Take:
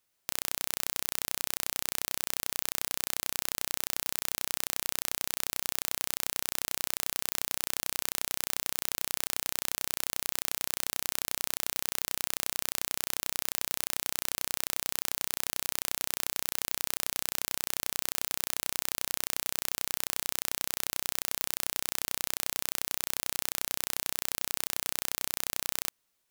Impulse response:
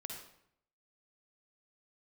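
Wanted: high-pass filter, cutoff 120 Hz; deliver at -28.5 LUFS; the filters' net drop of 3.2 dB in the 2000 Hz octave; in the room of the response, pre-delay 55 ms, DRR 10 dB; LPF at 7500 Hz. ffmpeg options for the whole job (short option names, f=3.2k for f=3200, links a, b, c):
-filter_complex "[0:a]highpass=120,lowpass=7.5k,equalizer=f=2k:t=o:g=-4,asplit=2[a][b];[1:a]atrim=start_sample=2205,adelay=55[c];[b][c]afir=irnorm=-1:irlink=0,volume=-7.5dB[d];[a][d]amix=inputs=2:normalize=0,volume=8.5dB"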